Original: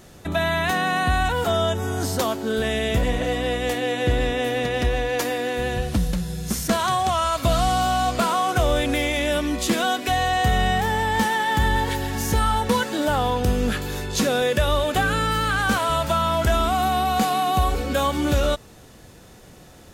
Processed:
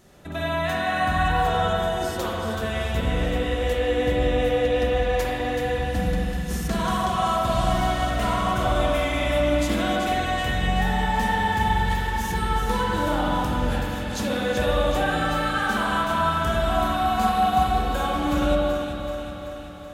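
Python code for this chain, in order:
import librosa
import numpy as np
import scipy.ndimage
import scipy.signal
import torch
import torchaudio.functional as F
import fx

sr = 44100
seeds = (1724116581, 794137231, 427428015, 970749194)

y = fx.lower_of_two(x, sr, delay_ms=0.31, at=(7.7, 8.23))
y = fx.echo_alternate(y, sr, ms=190, hz=1400.0, feedback_pct=78, wet_db=-5)
y = fx.rev_spring(y, sr, rt60_s=1.8, pass_ms=(44, 49), chirp_ms=35, drr_db=-4.0)
y = y * librosa.db_to_amplitude(-8.5)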